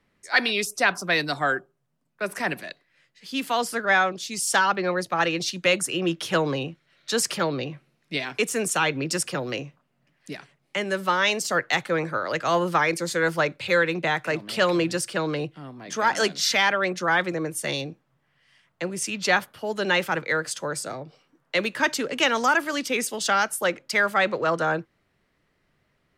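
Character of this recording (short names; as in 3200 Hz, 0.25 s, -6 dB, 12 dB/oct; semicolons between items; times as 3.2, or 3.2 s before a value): noise floor -71 dBFS; spectral tilt -3.0 dB/oct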